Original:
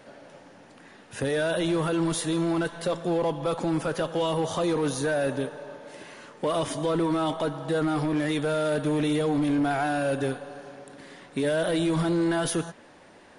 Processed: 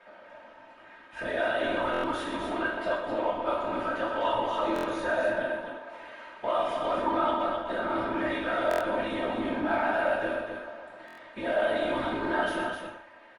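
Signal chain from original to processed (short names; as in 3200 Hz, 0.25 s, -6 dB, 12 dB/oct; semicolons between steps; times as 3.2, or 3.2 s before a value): whisperiser; three-band isolator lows -15 dB, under 520 Hz, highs -22 dB, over 3000 Hz; comb 3.2 ms, depth 62%; loudspeakers at several distances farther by 42 m -11 dB, 88 m -6 dB; reverb, pre-delay 3 ms, DRR -2.5 dB; stuck buffer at 1.92/4.74/8.69/11.06, samples 1024, times 4; gain -4 dB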